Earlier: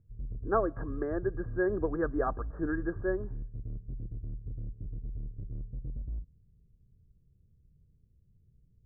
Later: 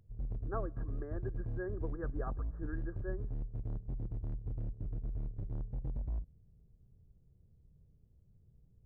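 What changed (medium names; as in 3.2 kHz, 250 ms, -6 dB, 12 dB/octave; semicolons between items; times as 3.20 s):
speech -12.0 dB; background: remove boxcar filter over 51 samples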